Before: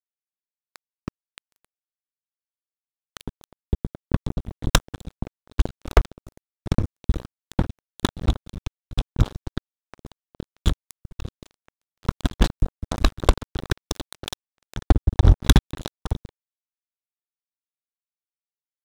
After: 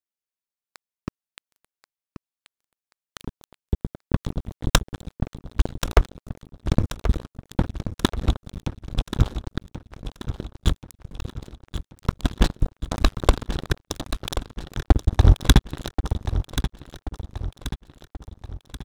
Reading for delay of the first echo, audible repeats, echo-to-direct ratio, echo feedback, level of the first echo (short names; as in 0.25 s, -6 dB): 1.082 s, 4, -9.5 dB, 49%, -10.5 dB